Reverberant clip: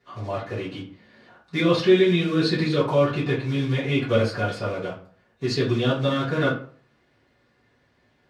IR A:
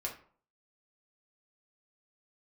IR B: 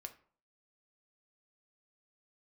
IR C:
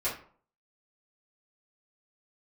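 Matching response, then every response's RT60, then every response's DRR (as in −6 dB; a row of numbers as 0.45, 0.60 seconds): C; 0.50, 0.50, 0.50 seconds; −2.0, 6.0, −11.0 decibels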